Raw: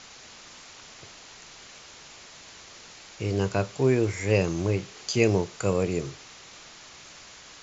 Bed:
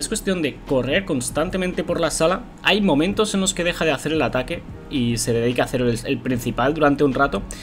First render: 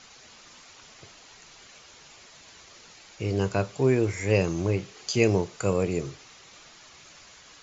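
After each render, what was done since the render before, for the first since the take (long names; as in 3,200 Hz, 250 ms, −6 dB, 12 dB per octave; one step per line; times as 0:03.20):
broadband denoise 6 dB, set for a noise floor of −48 dBFS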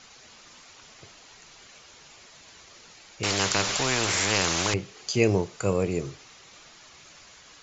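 0:03.23–0:04.74: every bin compressed towards the loudest bin 4 to 1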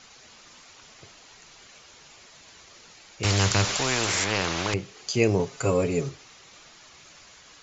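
0:03.24–0:03.65: parametric band 84 Hz +14.5 dB 1.5 octaves
0:04.24–0:04.73: high-frequency loss of the air 120 metres
0:05.39–0:06.09: comb filter 7.3 ms, depth 93%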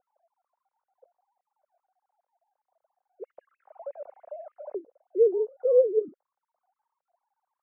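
three sine waves on the formant tracks
transistor ladder low-pass 600 Hz, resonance 65%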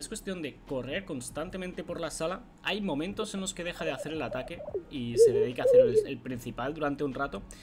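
mix in bed −14.5 dB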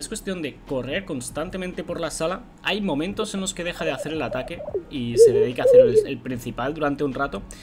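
level +7.5 dB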